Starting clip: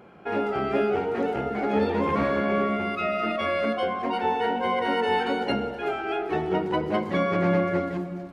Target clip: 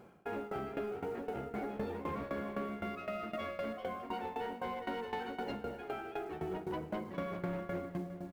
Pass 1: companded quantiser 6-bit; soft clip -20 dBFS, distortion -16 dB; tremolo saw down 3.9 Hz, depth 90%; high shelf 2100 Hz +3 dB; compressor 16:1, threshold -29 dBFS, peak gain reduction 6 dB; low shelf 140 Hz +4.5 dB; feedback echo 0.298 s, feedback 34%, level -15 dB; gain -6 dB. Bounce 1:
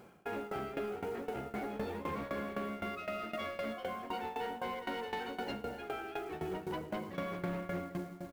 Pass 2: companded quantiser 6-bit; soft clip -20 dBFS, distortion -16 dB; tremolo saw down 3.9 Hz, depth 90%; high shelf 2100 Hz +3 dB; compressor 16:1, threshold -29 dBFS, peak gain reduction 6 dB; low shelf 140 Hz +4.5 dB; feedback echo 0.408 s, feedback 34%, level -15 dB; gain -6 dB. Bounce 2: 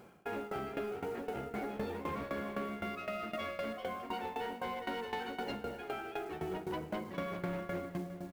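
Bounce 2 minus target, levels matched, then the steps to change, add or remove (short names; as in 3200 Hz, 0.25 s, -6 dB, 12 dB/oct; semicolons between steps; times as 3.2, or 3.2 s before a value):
4000 Hz band +4.0 dB
change: high shelf 2100 Hz -4 dB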